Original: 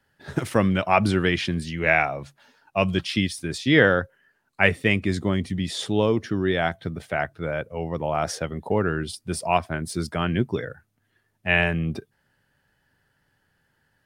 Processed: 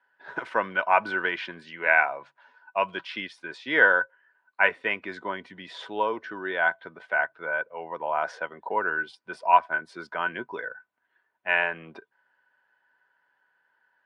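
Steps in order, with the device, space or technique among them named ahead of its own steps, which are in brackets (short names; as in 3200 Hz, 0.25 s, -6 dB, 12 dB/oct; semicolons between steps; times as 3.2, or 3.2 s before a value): tin-can telephone (BPF 600–2300 Hz; small resonant body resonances 980/1500 Hz, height 15 dB, ringing for 70 ms); gain -1.5 dB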